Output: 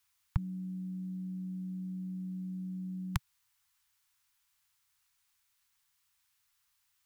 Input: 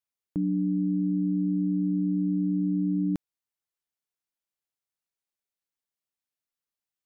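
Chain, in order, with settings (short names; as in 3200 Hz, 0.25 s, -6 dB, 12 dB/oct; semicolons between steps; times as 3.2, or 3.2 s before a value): inverse Chebyshev band-stop 200–580 Hz, stop band 40 dB; gain +16 dB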